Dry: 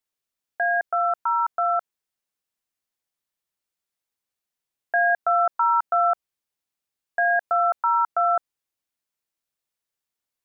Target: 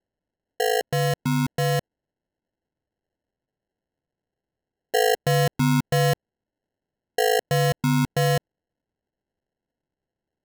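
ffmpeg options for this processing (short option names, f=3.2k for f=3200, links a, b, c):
-af "acrusher=samples=37:mix=1:aa=0.000001"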